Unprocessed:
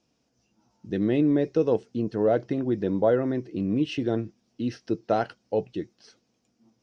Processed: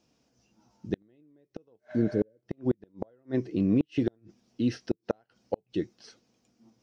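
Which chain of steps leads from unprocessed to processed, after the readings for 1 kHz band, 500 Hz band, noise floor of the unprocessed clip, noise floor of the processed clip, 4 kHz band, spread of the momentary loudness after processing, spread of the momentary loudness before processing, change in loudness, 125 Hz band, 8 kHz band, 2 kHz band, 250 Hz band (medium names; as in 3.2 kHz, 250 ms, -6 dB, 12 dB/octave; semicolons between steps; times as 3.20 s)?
-14.0 dB, -9.0 dB, -73 dBFS, -78 dBFS, -6.5 dB, 17 LU, 10 LU, -5.0 dB, -3.0 dB, no reading, -8.0 dB, -3.5 dB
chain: spectral replace 1.83–2.35 s, 590–4300 Hz after; inverted gate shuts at -16 dBFS, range -41 dB; trim +2 dB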